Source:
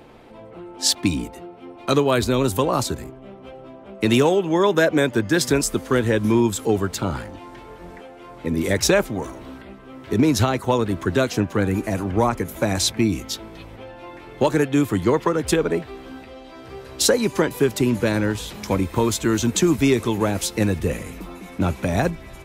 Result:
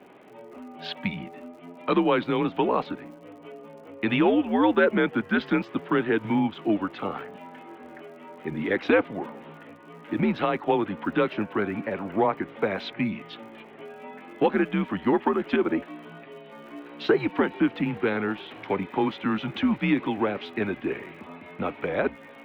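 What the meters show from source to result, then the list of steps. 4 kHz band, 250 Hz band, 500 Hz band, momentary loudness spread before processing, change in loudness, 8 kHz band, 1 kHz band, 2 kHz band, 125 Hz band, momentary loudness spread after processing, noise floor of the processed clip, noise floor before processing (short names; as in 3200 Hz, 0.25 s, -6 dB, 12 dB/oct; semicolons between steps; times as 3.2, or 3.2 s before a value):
-11.0 dB, -4.0 dB, -5.0 dB, 21 LU, -5.0 dB, under -35 dB, -2.5 dB, -2.5 dB, -11.5 dB, 21 LU, -47 dBFS, -42 dBFS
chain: vibrato 0.71 Hz 32 cents; mistuned SSB -100 Hz 330–3200 Hz; crackle 92/s -46 dBFS; gain -2 dB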